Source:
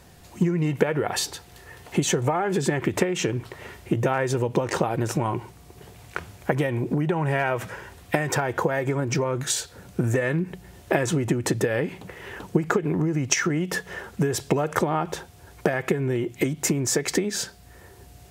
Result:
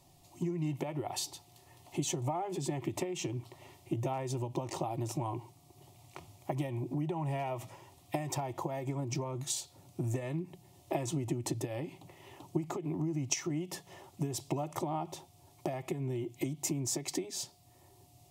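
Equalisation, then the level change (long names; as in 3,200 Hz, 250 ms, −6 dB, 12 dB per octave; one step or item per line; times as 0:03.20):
phaser with its sweep stopped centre 310 Hz, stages 8
−9.0 dB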